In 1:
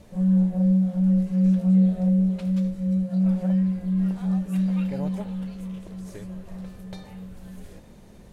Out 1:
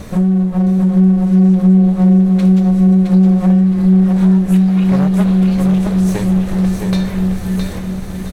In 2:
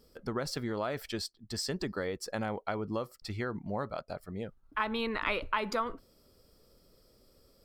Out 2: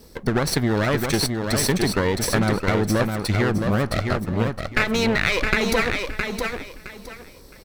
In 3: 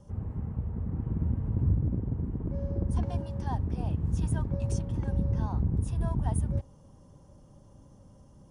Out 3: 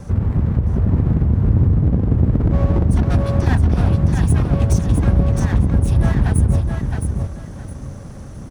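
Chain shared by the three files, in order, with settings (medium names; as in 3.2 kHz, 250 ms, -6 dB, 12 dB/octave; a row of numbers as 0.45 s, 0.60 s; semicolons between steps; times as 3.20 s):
comb filter that takes the minimum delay 0.49 ms; compression 6:1, threshold -32 dBFS; on a send: feedback delay 665 ms, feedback 24%, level -5 dB; on the sum: peak normalisation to -3 dBFS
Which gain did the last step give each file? +20.0 dB, +16.0 dB, +19.5 dB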